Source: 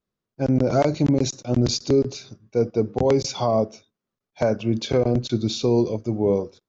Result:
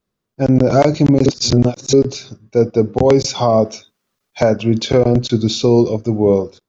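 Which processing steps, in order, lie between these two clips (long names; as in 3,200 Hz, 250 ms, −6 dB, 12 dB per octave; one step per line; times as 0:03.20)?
0:01.26–0:01.93: reverse
0:03.65–0:05.26: one half of a high-frequency compander encoder only
level +7.5 dB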